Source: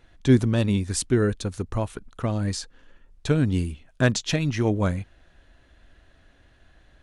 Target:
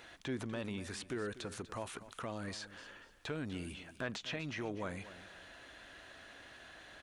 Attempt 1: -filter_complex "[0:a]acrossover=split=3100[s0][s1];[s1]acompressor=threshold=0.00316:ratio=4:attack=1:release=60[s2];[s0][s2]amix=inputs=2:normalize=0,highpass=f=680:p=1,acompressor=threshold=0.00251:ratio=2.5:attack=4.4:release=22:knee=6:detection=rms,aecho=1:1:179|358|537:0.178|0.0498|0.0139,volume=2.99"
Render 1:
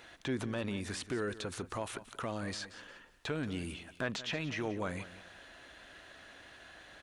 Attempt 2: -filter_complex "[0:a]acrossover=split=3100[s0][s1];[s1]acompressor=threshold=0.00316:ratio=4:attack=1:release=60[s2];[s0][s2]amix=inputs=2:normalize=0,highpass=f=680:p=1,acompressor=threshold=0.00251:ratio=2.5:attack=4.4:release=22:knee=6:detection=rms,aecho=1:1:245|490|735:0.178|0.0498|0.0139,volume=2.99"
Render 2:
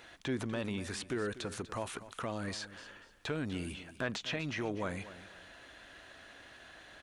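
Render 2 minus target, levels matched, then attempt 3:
compression: peak gain reduction -4 dB
-filter_complex "[0:a]acrossover=split=3100[s0][s1];[s1]acompressor=threshold=0.00316:ratio=4:attack=1:release=60[s2];[s0][s2]amix=inputs=2:normalize=0,highpass=f=680:p=1,acompressor=threshold=0.00119:ratio=2.5:attack=4.4:release=22:knee=6:detection=rms,aecho=1:1:245|490|735:0.178|0.0498|0.0139,volume=2.99"

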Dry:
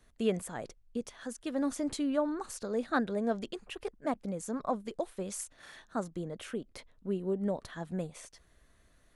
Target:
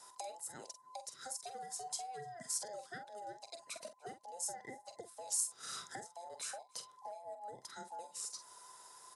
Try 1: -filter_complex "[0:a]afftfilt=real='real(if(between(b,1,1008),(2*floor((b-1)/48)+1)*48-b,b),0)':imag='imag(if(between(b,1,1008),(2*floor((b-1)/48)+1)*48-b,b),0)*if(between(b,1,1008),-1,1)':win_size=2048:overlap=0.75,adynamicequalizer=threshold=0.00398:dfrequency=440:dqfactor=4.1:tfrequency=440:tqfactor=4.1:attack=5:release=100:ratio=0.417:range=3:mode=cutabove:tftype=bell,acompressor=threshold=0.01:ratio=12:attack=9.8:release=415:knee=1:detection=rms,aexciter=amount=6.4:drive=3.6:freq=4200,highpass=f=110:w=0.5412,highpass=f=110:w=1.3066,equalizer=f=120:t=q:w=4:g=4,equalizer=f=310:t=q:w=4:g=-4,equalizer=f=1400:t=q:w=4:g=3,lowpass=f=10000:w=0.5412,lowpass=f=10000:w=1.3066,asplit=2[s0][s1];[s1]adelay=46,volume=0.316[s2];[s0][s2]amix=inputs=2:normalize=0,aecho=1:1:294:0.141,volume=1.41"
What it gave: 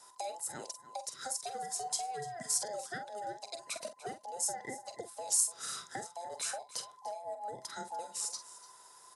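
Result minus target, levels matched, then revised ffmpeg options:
echo-to-direct +11 dB; compression: peak gain reduction -6.5 dB
-filter_complex "[0:a]afftfilt=real='real(if(between(b,1,1008),(2*floor((b-1)/48)+1)*48-b,b),0)':imag='imag(if(between(b,1,1008),(2*floor((b-1)/48)+1)*48-b,b),0)*if(between(b,1,1008),-1,1)':win_size=2048:overlap=0.75,adynamicequalizer=threshold=0.00398:dfrequency=440:dqfactor=4.1:tfrequency=440:tqfactor=4.1:attack=5:release=100:ratio=0.417:range=3:mode=cutabove:tftype=bell,acompressor=threshold=0.00447:ratio=12:attack=9.8:release=415:knee=1:detection=rms,aexciter=amount=6.4:drive=3.6:freq=4200,highpass=f=110:w=0.5412,highpass=f=110:w=1.3066,equalizer=f=120:t=q:w=4:g=4,equalizer=f=310:t=q:w=4:g=-4,equalizer=f=1400:t=q:w=4:g=3,lowpass=f=10000:w=0.5412,lowpass=f=10000:w=1.3066,asplit=2[s0][s1];[s1]adelay=46,volume=0.316[s2];[s0][s2]amix=inputs=2:normalize=0,aecho=1:1:294:0.0398,volume=1.41"

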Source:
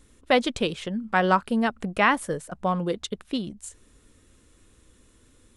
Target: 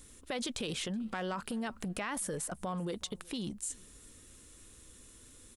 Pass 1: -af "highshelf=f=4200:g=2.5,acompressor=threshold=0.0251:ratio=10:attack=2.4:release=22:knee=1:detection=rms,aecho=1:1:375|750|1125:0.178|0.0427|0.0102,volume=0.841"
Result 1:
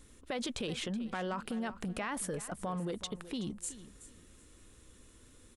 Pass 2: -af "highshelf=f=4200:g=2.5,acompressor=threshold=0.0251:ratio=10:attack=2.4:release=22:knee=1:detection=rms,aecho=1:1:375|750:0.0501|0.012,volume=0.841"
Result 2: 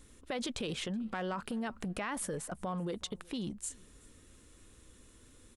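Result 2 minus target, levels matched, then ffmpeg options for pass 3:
8 kHz band -2.5 dB
-af "highshelf=f=4200:g=11.5,acompressor=threshold=0.0251:ratio=10:attack=2.4:release=22:knee=1:detection=rms,aecho=1:1:375|750:0.0501|0.012,volume=0.841"

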